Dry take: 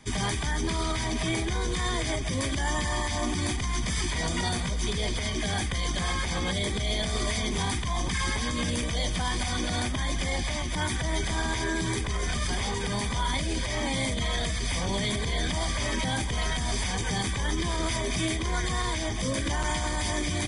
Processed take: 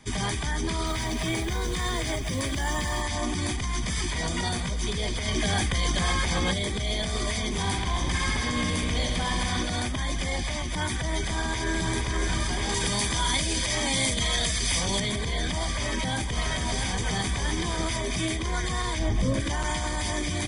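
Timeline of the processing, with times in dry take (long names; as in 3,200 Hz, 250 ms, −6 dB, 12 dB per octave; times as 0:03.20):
0:00.86–0:03.02: log-companded quantiser 6 bits
0:05.28–0:06.54: clip gain +3.5 dB
0:07.57–0:09.63: bucket-brigade delay 66 ms, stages 2,048, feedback 77%, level −6 dB
0:11.19–0:11.95: delay throw 470 ms, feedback 65%, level −5 dB
0:12.69–0:15.00: high-shelf EQ 2,800 Hz +9.5 dB
0:15.67–0:17.84: single-tap delay 682 ms −6 dB
0:18.99–0:19.40: spectral tilt −2 dB per octave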